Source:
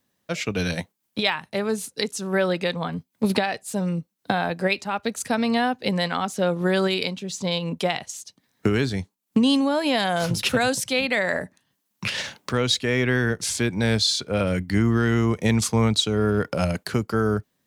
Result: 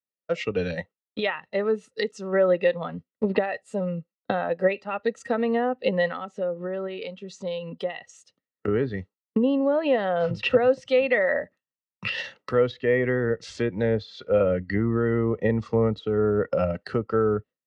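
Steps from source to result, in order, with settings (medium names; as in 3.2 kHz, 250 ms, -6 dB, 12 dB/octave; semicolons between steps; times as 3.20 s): spectral noise reduction 8 dB; gate with hold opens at -38 dBFS; low-pass that closes with the level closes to 1.3 kHz, closed at -16.5 dBFS; dynamic bell 1.3 kHz, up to -5 dB, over -41 dBFS, Q 2.2; 6.11–8.68 s: compression 2.5:1, threshold -32 dBFS, peak gain reduction 11 dB; distance through air 85 m; small resonant body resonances 510/1300/1900/2700 Hz, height 13 dB, ringing for 20 ms; trim -5.5 dB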